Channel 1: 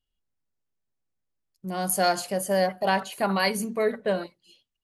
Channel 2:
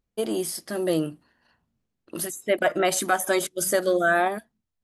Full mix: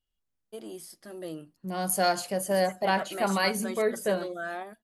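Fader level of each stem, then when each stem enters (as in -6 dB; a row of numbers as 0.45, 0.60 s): -2.0, -14.5 dB; 0.00, 0.35 s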